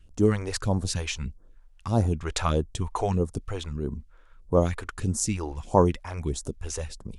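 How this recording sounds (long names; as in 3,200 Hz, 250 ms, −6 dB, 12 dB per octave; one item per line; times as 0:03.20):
phaser sweep stages 2, 1.6 Hz, lowest notch 150–2,500 Hz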